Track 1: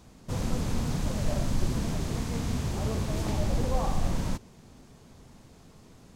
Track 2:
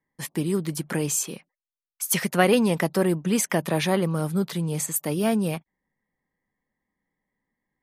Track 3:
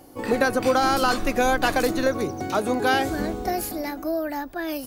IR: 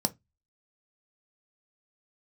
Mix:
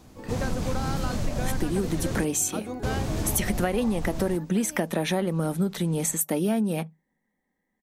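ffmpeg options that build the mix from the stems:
-filter_complex "[0:a]volume=1.5dB,asplit=3[a][b][c];[a]atrim=end=2.25,asetpts=PTS-STARTPTS,afade=t=out:st=2.246:d=0.004:c=hsin[d];[b]atrim=start=2.25:end=2.83,asetpts=PTS-STARTPTS,volume=0[e];[c]atrim=start=2.83,asetpts=PTS-STARTPTS,afade=t=in:d=0.004:c=hsin[f];[d][e][f]concat=n=3:v=0:a=1[g];[1:a]adelay=1250,volume=1dB,asplit=2[h][i];[i]volume=-15.5dB[j];[2:a]lowshelf=f=160:g=11,volume=-13dB[k];[3:a]atrim=start_sample=2205[l];[j][l]afir=irnorm=-1:irlink=0[m];[g][h][k][m]amix=inputs=4:normalize=0,acompressor=threshold=-21dB:ratio=12"

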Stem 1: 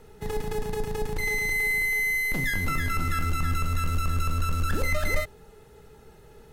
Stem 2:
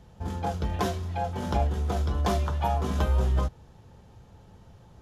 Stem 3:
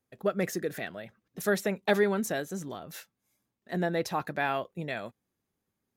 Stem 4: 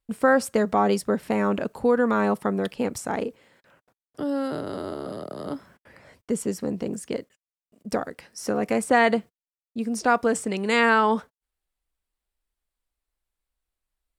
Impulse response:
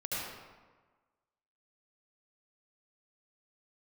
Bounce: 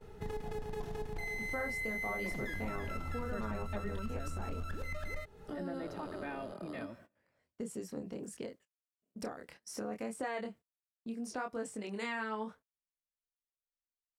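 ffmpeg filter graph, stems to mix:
-filter_complex "[0:a]aemphasis=mode=reproduction:type=cd,alimiter=limit=-19.5dB:level=0:latency=1:release=249,volume=-2.5dB[a];[1:a]aeval=exprs='val(0)*sin(2*PI*20*n/s)':c=same,volume=-15.5dB,asplit=2[b][c];[c]volume=-7dB[d];[2:a]bass=f=250:g=12,treble=f=4k:g=-13,aecho=1:1:3.3:0.87,adelay=1850,volume=-11dB,asplit=2[e][f];[f]volume=-22dB[g];[3:a]flanger=delay=22.5:depth=5.2:speed=0.68,adelay=1300,volume=-6dB[h];[4:a]atrim=start_sample=2205[i];[d][g]amix=inputs=2:normalize=0[j];[j][i]afir=irnorm=-1:irlink=0[k];[a][b][e][h][k]amix=inputs=5:normalize=0,agate=range=-18dB:threshold=-55dB:ratio=16:detection=peak,acompressor=threshold=-40dB:ratio=2.5"

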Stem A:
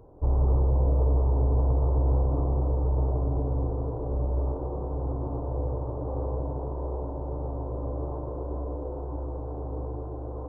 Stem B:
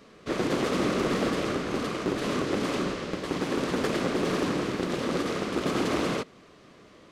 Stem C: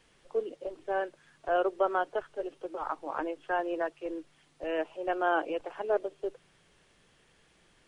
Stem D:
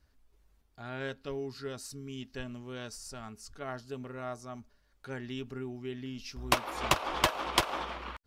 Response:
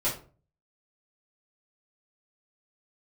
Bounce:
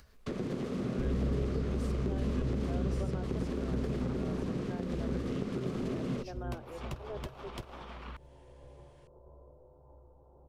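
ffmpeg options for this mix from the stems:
-filter_complex "[0:a]agate=range=-33dB:threshold=-22dB:ratio=3:detection=peak,adelay=750,volume=-14.5dB,asplit=2[a][b];[b]volume=-7dB[c];[1:a]agate=range=-27dB:threshold=-47dB:ratio=16:detection=peak,acompressor=threshold=-29dB:ratio=6,volume=2.5dB[d];[2:a]adelay=1200,volume=-5.5dB[e];[3:a]alimiter=limit=-20.5dB:level=0:latency=1:release=499,volume=2dB[f];[4:a]atrim=start_sample=2205[g];[c][g]afir=irnorm=-1:irlink=0[h];[a][d][e][f][h]amix=inputs=5:normalize=0,acrossover=split=380[i][j];[j]acompressor=threshold=-46dB:ratio=8[k];[i][k]amix=inputs=2:normalize=0,equalizer=f=310:w=7.8:g=-13,acompressor=mode=upward:threshold=-52dB:ratio=2.5"

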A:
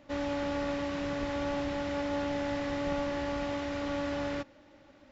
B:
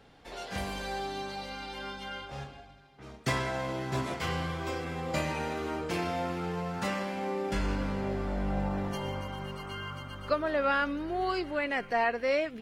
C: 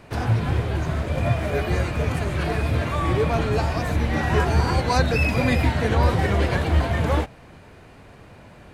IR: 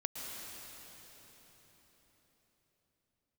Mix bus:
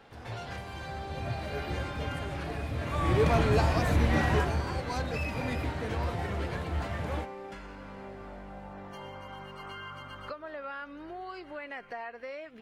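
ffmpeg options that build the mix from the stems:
-filter_complex "[0:a]adelay=1500,volume=-13.5dB[a];[1:a]acompressor=threshold=-41dB:ratio=10,equalizer=f=1.2k:w=0.38:g=8,volume=-3dB[b];[2:a]asoftclip=type=hard:threshold=-13dB,volume=-2.5dB,afade=t=in:st=0.67:d=0.74:silence=0.375837,afade=t=in:st=2.74:d=0.52:silence=0.316228,afade=t=out:st=4.16:d=0.46:silence=0.298538[c];[a][b][c]amix=inputs=3:normalize=0"

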